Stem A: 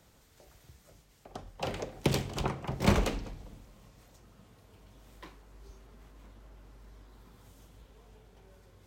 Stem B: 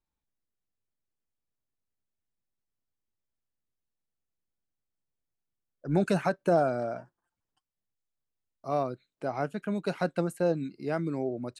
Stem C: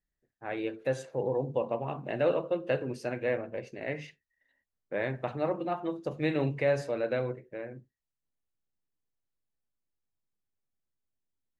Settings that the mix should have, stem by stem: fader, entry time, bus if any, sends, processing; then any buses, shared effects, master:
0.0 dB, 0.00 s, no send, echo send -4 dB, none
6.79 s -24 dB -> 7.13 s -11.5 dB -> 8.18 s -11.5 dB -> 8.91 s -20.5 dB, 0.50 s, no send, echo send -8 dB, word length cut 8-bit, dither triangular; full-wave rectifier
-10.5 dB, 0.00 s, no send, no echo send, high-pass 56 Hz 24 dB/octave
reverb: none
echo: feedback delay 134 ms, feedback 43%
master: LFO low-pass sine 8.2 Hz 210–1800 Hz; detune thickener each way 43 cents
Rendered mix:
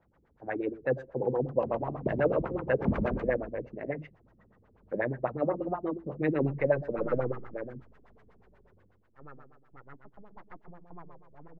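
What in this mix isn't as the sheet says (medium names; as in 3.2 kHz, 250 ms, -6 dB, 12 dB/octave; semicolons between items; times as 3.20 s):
stem A 0.0 dB -> -7.5 dB; stem C -10.5 dB -> -1.0 dB; master: missing detune thickener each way 43 cents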